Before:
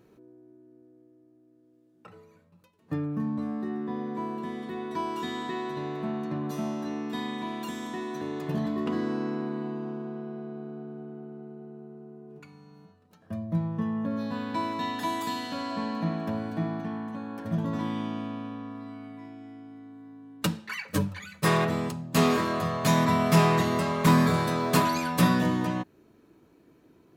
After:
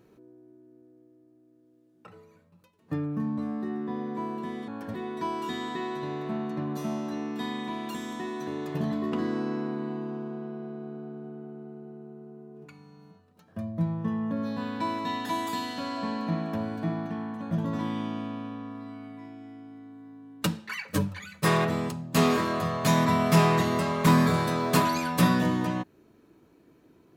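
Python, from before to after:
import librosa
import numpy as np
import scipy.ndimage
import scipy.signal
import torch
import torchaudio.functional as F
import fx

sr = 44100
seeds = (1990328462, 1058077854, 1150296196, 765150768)

y = fx.edit(x, sr, fx.move(start_s=17.25, length_s=0.26, to_s=4.68), tone=tone)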